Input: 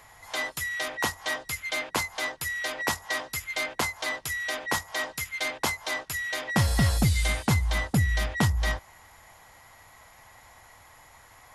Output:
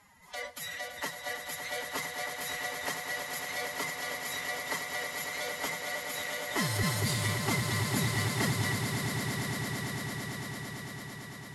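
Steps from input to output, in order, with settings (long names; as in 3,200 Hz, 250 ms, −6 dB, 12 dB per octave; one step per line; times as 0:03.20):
phase-vocoder pitch shift with formants kept +11 semitones
echo that builds up and dies away 112 ms, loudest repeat 8, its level −10 dB
level −8 dB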